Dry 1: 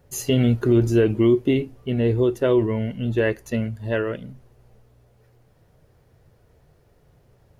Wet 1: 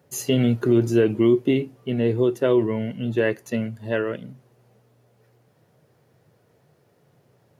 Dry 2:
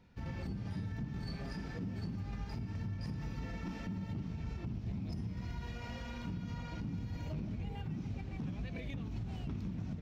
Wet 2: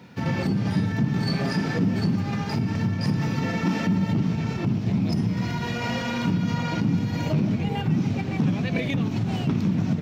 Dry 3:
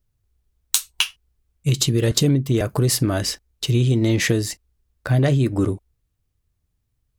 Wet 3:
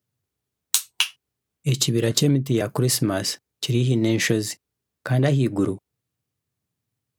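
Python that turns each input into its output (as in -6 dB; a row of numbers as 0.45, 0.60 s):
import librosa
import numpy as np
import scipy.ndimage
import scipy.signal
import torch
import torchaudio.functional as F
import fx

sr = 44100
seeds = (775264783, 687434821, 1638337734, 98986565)

y = scipy.signal.sosfilt(scipy.signal.butter(4, 120.0, 'highpass', fs=sr, output='sos'), x)
y = y * 10.0 ** (-24 / 20.0) / np.sqrt(np.mean(np.square(y)))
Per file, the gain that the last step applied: -0.5, +18.5, -1.0 dB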